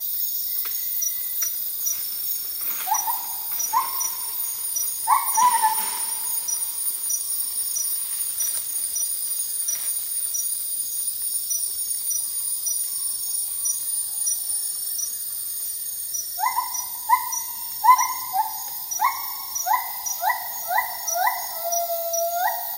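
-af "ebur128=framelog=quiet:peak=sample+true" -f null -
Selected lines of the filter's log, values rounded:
Integrated loudness:
  I:         -22.7 LUFS
  Threshold: -32.7 LUFS
Loudness range:
  LRA:         2.6 LU
  Threshold: -42.7 LUFS
  LRA low:   -23.9 LUFS
  LRA high:  -21.3 LUFS
Sample peak:
  Peak:       -3.3 dBFS
True peak:
  Peak:       -3.3 dBFS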